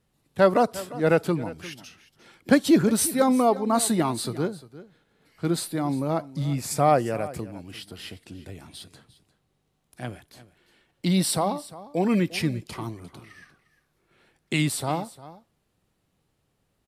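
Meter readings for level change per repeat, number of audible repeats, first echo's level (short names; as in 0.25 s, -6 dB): no steady repeat, 1, -17.5 dB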